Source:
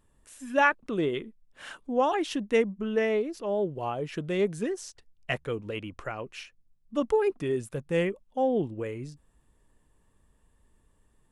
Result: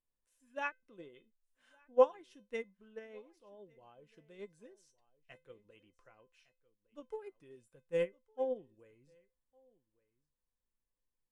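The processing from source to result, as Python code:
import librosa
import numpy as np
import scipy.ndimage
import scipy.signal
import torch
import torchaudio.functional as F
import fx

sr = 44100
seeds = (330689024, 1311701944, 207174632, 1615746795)

y = fx.peak_eq(x, sr, hz=75.0, db=-4.5, octaves=1.9)
y = fx.comb_fb(y, sr, f0_hz=510.0, decay_s=0.2, harmonics='all', damping=0.0, mix_pct=80)
y = y + 10.0 ** (-19.0 / 20.0) * np.pad(y, (int(1159 * sr / 1000.0), 0))[:len(y)]
y = fx.upward_expand(y, sr, threshold_db=-40.0, expansion=2.5)
y = F.gain(torch.from_numpy(y), 6.5).numpy()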